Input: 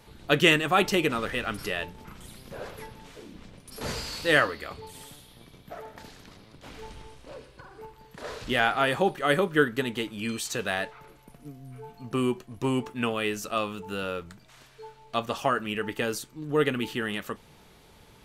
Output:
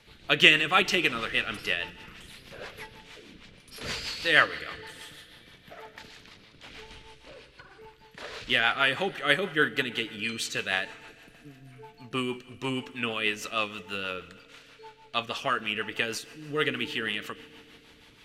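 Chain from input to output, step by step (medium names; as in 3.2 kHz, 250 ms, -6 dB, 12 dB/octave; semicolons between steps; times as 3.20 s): on a send at -16.5 dB: reverberation RT60 2.9 s, pre-delay 28 ms; on the sum: rotary cabinet horn 6.3 Hz; peaking EQ 2.7 kHz +12.5 dB 2.4 oct; trim -5 dB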